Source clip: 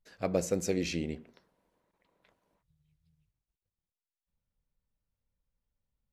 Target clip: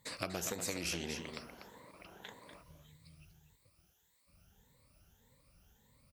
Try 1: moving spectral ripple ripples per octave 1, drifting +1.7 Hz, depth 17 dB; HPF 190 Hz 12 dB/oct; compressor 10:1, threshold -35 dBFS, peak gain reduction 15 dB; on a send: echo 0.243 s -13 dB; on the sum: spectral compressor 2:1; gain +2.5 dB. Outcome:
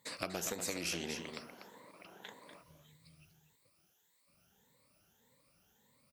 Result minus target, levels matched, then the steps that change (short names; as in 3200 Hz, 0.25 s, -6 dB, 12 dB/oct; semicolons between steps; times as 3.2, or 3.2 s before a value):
125 Hz band -3.5 dB
change: HPF 55 Hz 12 dB/oct